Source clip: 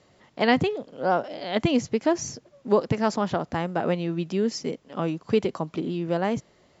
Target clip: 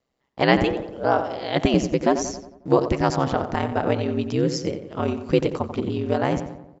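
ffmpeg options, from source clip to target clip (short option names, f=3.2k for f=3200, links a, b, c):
-filter_complex "[0:a]aeval=exprs='val(0)*sin(2*PI*65*n/s)':c=same,agate=range=-21dB:threshold=-50dB:ratio=16:detection=peak,asplit=2[a][b];[b]adelay=90,lowpass=f=2.2k:p=1,volume=-9dB,asplit=2[c][d];[d]adelay=90,lowpass=f=2.2k:p=1,volume=0.53,asplit=2[e][f];[f]adelay=90,lowpass=f=2.2k:p=1,volume=0.53,asplit=2[g][h];[h]adelay=90,lowpass=f=2.2k:p=1,volume=0.53,asplit=2[i][j];[j]adelay=90,lowpass=f=2.2k:p=1,volume=0.53,asplit=2[k][l];[l]adelay=90,lowpass=f=2.2k:p=1,volume=0.53[m];[c][e][g][i][k][m]amix=inputs=6:normalize=0[n];[a][n]amix=inputs=2:normalize=0,volume=5.5dB"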